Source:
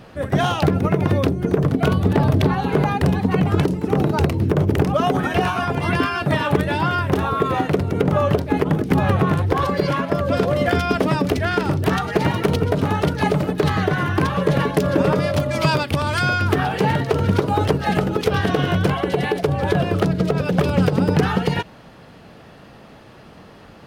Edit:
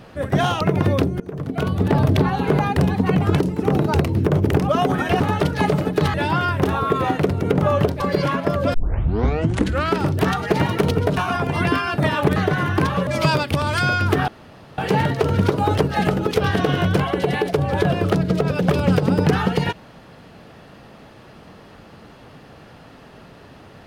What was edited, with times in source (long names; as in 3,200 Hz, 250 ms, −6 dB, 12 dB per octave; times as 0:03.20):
0:00.61–0:00.86: remove
0:01.45–0:02.23: fade in, from −20.5 dB
0:05.45–0:06.64: swap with 0:12.82–0:13.76
0:08.50–0:09.65: remove
0:10.39: tape start 1.25 s
0:14.47–0:15.47: remove
0:16.68: splice in room tone 0.50 s